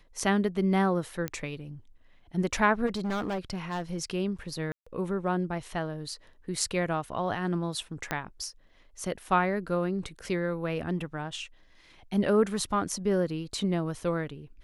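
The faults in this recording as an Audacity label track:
1.280000	1.280000	pop -16 dBFS
2.860000	3.980000	clipped -27.5 dBFS
4.720000	4.870000	gap 0.145 s
8.110000	8.110000	pop -14 dBFS

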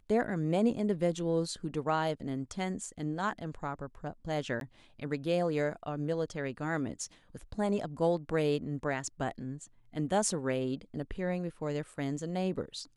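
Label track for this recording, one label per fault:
4.600000	4.610000	gap 12 ms

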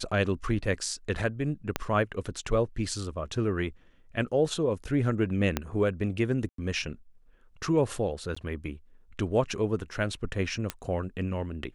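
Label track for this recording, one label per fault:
1.760000	1.760000	pop -11 dBFS
5.570000	5.570000	pop -11 dBFS
6.490000	6.580000	gap 93 ms
8.350000	8.370000	gap 15 ms
10.700000	10.700000	pop -14 dBFS

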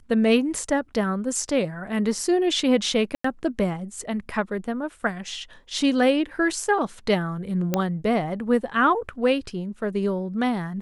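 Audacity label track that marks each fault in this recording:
3.150000	3.240000	gap 94 ms
7.740000	7.740000	pop -8 dBFS

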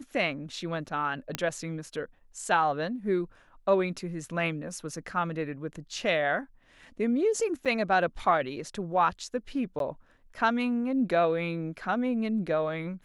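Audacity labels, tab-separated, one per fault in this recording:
1.350000	1.350000	pop -12 dBFS
7.650000	7.660000	gap 6.6 ms
9.790000	9.800000	gap 12 ms

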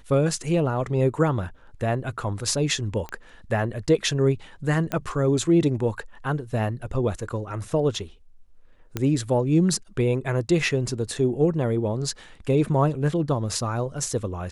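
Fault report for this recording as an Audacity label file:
3.090000	3.090000	pop -20 dBFS
4.920000	4.920000	pop -13 dBFS
8.970000	8.970000	pop -12 dBFS

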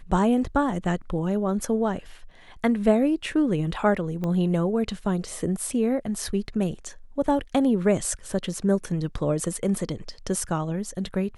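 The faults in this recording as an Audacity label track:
4.240000	4.240000	pop -18 dBFS

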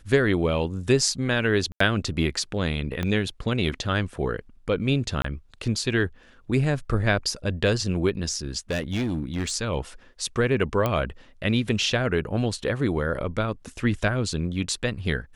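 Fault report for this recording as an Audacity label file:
1.720000	1.800000	gap 84 ms
3.030000	3.030000	pop -14 dBFS
5.220000	5.240000	gap 24 ms
8.700000	9.530000	clipped -22.5 dBFS
10.860000	10.860000	pop -11 dBFS

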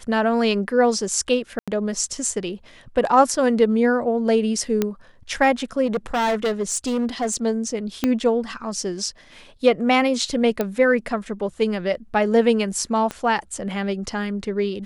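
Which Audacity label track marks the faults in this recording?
1.590000	1.680000	gap 86 ms
4.820000	4.820000	pop -7 dBFS
5.860000	7.360000	clipped -18 dBFS
8.040000	8.040000	pop -7 dBFS
10.610000	10.610000	pop -9 dBFS
13.110000	13.110000	pop -14 dBFS

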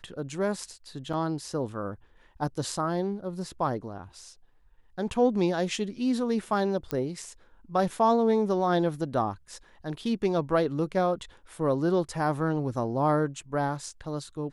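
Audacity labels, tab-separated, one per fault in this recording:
1.130000	1.130000	gap 4.6 ms
6.910000	6.910000	pop -16 dBFS

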